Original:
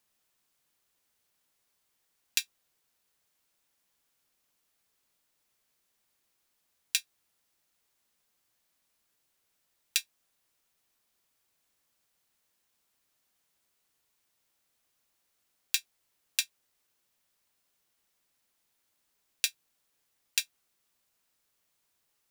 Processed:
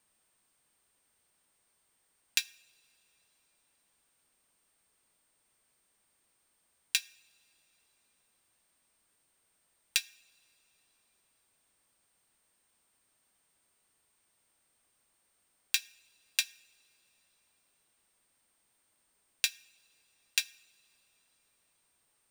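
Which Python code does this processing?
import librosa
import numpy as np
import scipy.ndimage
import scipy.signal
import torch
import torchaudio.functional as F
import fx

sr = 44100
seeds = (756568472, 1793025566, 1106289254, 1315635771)

y = x + 10.0 ** (-73.0 / 20.0) * np.sin(2.0 * np.pi * 8600.0 * np.arange(len(x)) / sr)
y = fx.high_shelf(y, sr, hz=3600.0, db=-7.0)
y = fx.rev_double_slope(y, sr, seeds[0], early_s=0.59, late_s=3.9, knee_db=-18, drr_db=19.5)
y = F.gain(torch.from_numpy(y), 4.0).numpy()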